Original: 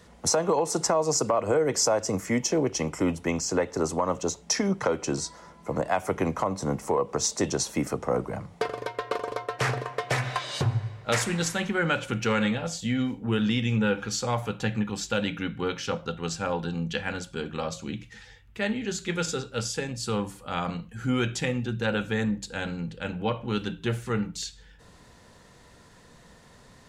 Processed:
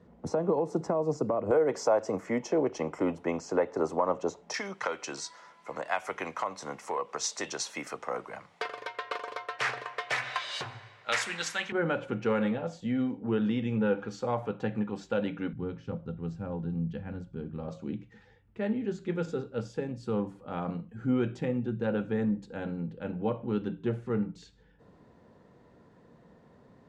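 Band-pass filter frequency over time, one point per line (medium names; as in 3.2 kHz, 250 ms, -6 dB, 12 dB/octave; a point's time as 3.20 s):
band-pass filter, Q 0.66
240 Hz
from 1.51 s 650 Hz
from 4.54 s 2.2 kHz
from 11.72 s 430 Hz
from 15.53 s 120 Hz
from 17.68 s 310 Hz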